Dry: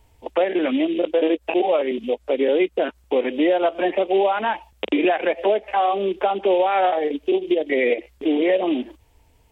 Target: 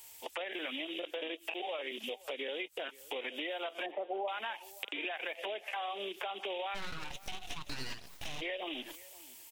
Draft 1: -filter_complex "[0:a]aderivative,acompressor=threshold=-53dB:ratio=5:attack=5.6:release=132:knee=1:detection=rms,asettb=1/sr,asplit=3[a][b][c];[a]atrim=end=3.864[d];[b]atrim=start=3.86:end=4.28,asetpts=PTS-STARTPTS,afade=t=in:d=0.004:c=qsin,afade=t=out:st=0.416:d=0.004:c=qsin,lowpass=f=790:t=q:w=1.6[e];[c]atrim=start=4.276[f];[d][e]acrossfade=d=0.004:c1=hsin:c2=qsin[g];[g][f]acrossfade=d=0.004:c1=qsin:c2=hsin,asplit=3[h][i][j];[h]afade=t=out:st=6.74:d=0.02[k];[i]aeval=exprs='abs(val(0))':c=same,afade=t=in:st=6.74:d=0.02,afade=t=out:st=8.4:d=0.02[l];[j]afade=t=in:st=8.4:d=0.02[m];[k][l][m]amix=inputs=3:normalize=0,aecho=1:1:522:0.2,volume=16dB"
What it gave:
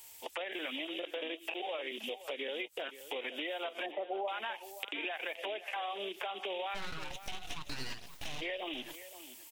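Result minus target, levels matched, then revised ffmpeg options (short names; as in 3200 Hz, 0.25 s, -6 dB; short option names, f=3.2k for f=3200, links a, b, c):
echo-to-direct +7 dB
-filter_complex "[0:a]aderivative,acompressor=threshold=-53dB:ratio=5:attack=5.6:release=132:knee=1:detection=rms,asettb=1/sr,asplit=3[a][b][c];[a]atrim=end=3.864[d];[b]atrim=start=3.86:end=4.28,asetpts=PTS-STARTPTS,afade=t=in:d=0.004:c=qsin,afade=t=out:st=0.416:d=0.004:c=qsin,lowpass=f=790:t=q:w=1.6[e];[c]atrim=start=4.276[f];[d][e]acrossfade=d=0.004:c1=hsin:c2=qsin[g];[g][f]acrossfade=d=0.004:c1=qsin:c2=hsin,asplit=3[h][i][j];[h]afade=t=out:st=6.74:d=0.02[k];[i]aeval=exprs='abs(val(0))':c=same,afade=t=in:st=6.74:d=0.02,afade=t=out:st=8.4:d=0.02[l];[j]afade=t=in:st=8.4:d=0.02[m];[k][l][m]amix=inputs=3:normalize=0,aecho=1:1:522:0.0891,volume=16dB"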